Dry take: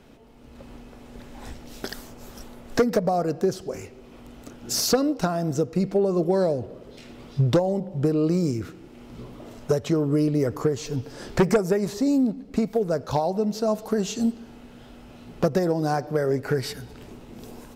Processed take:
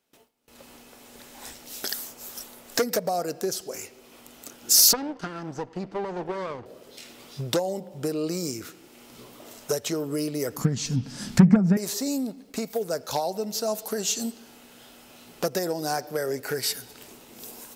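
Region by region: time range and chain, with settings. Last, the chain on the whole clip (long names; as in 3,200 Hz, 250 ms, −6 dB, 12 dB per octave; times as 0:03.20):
0:04.93–0:06.66: lower of the sound and its delayed copy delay 0.64 ms + head-to-tape spacing loss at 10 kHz 28 dB
0:10.57–0:11.77: low shelf with overshoot 290 Hz +12.5 dB, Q 3 + treble cut that deepens with the level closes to 1,400 Hz, closed at −3.5 dBFS
whole clip: RIAA equalisation recording; noise gate with hold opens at −42 dBFS; dynamic equaliser 1,100 Hz, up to −4 dB, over −46 dBFS, Q 4.1; level −1.5 dB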